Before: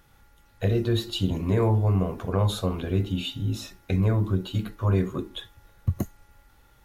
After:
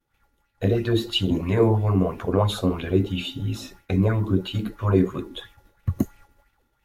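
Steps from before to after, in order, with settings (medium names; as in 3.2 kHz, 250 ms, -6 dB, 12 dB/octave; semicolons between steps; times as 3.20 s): expander -47 dBFS; sweeping bell 3 Hz 250–2700 Hz +12 dB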